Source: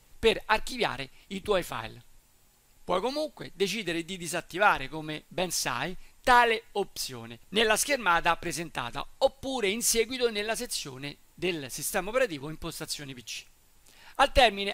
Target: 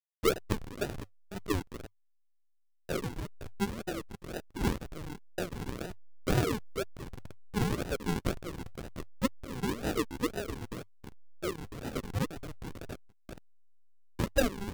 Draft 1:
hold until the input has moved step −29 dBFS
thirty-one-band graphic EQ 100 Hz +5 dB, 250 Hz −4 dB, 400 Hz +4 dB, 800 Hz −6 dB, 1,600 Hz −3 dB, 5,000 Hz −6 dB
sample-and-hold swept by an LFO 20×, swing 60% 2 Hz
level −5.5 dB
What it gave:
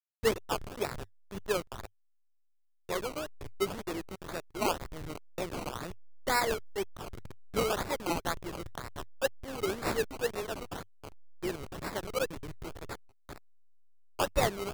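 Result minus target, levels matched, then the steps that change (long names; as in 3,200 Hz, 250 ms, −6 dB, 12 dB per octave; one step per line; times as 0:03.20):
sample-and-hold swept by an LFO: distortion −18 dB
change: sample-and-hold swept by an LFO 57×, swing 60% 2 Hz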